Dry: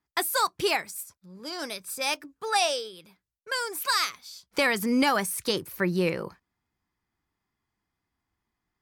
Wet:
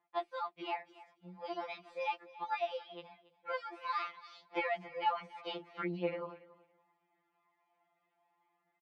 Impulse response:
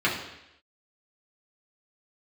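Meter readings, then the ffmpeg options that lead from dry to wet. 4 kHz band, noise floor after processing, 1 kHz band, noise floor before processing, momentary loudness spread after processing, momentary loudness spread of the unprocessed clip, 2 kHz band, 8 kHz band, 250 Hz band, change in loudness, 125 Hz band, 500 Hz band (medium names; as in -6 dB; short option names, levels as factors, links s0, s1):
-18.5 dB, -81 dBFS, -7.5 dB, -85 dBFS, 16 LU, 14 LU, -14.5 dB, under -40 dB, -16.5 dB, -12.5 dB, -14.0 dB, -10.0 dB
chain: -af "equalizer=f=760:w=4.2:g=13,acompressor=threshold=0.00794:ratio=3,highpass=380,aphaser=in_gain=1:out_gain=1:delay=1.6:decay=0.29:speed=0.44:type=triangular,equalizer=f=1600:w=3.3:g=-8,aecho=1:1:280|560:0.112|0.0191,dynaudnorm=f=610:g=5:m=1.5,lowpass=f=2800:w=0.5412,lowpass=f=2800:w=1.3066,afftfilt=real='re*2.83*eq(mod(b,8),0)':imag='im*2.83*eq(mod(b,8),0)':win_size=2048:overlap=0.75,volume=1.78"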